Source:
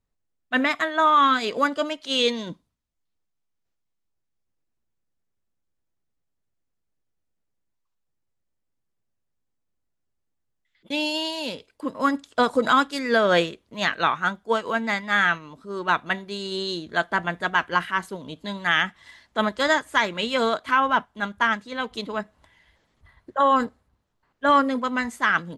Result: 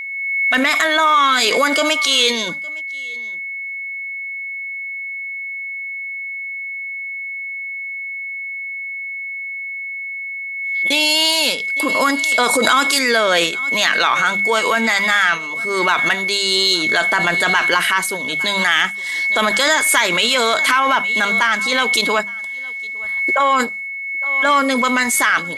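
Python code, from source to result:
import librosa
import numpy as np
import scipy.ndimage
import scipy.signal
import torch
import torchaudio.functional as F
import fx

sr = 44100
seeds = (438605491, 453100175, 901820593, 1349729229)

p1 = fx.riaa(x, sr, side='recording')
p2 = fx.hum_notches(p1, sr, base_hz=50, count=4)
p3 = fx.over_compress(p2, sr, threshold_db=-25.0, ratio=-0.5)
p4 = p2 + (p3 * 10.0 ** (-1.5 / 20.0))
p5 = fx.cheby_harmonics(p4, sr, harmonics=(5,), levels_db=(-25,), full_scale_db=-3.0)
p6 = p5 + 10.0 ** (-26.0 / 20.0) * np.sin(2.0 * np.pi * 2200.0 * np.arange(len(p5)) / sr)
p7 = p6 + fx.echo_single(p6, sr, ms=860, db=-24.0, dry=0)
p8 = fx.pre_swell(p7, sr, db_per_s=30.0)
y = p8 * 10.0 ** (1.0 / 20.0)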